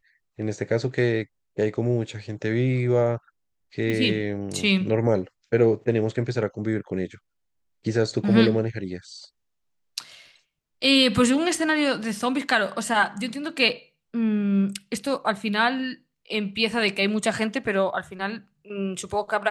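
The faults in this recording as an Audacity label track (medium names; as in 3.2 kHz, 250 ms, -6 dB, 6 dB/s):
3.900000	3.900000	pop -15 dBFS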